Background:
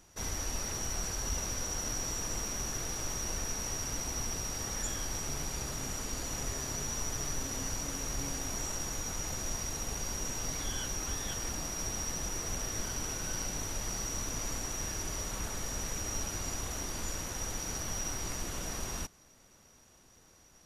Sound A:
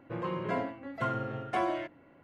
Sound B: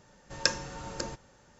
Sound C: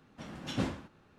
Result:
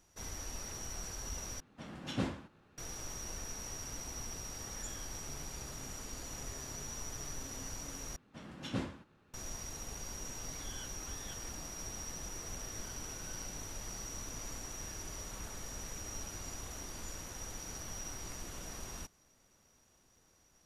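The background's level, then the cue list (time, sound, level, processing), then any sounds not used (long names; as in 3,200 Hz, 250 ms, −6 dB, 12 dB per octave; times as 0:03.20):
background −7.5 dB
0:01.60: overwrite with C −2.5 dB
0:08.16: overwrite with C −4.5 dB + parametric band 730 Hz −2.5 dB 0.32 octaves
not used: A, B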